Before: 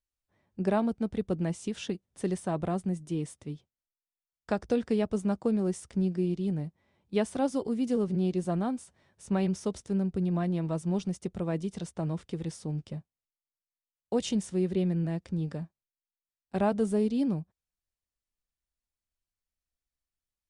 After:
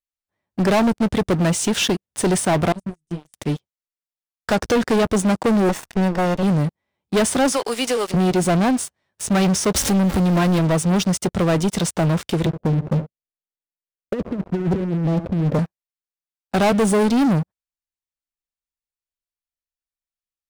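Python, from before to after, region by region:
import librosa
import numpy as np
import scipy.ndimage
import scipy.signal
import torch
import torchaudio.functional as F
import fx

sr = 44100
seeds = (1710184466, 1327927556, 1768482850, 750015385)

y = fx.chain(x, sr, fx.tone_stack(knobs='10-0-1'),
    fx.transient(attack_db=11, sustain_db=1),
    fx.detune_double(cents=10), at=(2.72, 3.34))
y = fx.chain(y, sr, fx.lower_of_two(delay_ms=1.1),
    fx.lowpass(hz=2400.0, slope=6),
    fx.low_shelf(hz=160.0, db=-6.0), at=(5.69, 6.43))
y = fx.chain(y, sr, fx.highpass(hz=800.0, slope=12),
    fx.band_squash(depth_pct=100), at=(7.52, 8.14))
y = fx.chain(y, sr, fx.zero_step(step_db=-39.5),
    fx.comb(ms=3.7, depth=0.39), at=(9.75, 10.59))
y = fx.chain(y, sr, fx.steep_lowpass(hz=660.0, slope=72),
    fx.over_compress(threshold_db=-33.0, ratio=-0.5),
    fx.echo_single(ms=70, db=-15.0), at=(12.46, 15.59))
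y = fx.low_shelf(y, sr, hz=450.0, db=-7.0)
y = fx.leveller(y, sr, passes=5)
y = F.gain(torch.from_numpy(y), 5.0).numpy()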